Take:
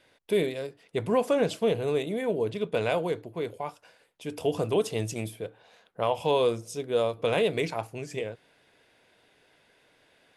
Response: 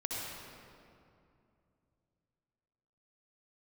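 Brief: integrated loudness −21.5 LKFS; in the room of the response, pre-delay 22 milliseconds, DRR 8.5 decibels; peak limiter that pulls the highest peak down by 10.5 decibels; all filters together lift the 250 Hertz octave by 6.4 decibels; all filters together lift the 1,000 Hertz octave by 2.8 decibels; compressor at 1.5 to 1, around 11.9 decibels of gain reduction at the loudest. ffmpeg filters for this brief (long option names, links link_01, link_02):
-filter_complex "[0:a]equalizer=frequency=250:width_type=o:gain=8,equalizer=frequency=1000:width_type=o:gain=3,acompressor=threshold=-51dB:ratio=1.5,alimiter=level_in=7dB:limit=-24dB:level=0:latency=1,volume=-7dB,asplit=2[link_01][link_02];[1:a]atrim=start_sample=2205,adelay=22[link_03];[link_02][link_03]afir=irnorm=-1:irlink=0,volume=-12dB[link_04];[link_01][link_04]amix=inputs=2:normalize=0,volume=20dB"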